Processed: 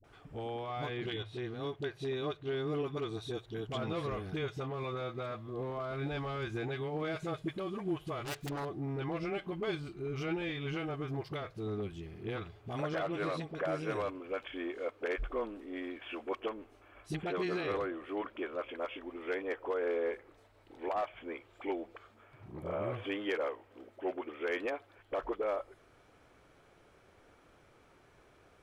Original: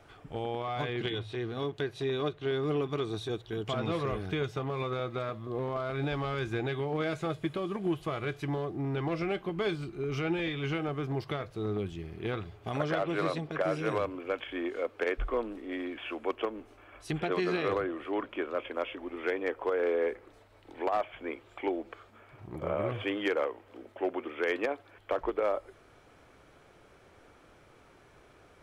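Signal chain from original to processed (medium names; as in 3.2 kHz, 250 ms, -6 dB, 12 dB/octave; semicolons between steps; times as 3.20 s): 8.20–8.61 s: self-modulated delay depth 0.85 ms; phase dispersion highs, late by 42 ms, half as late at 450 Hz; trim -4.5 dB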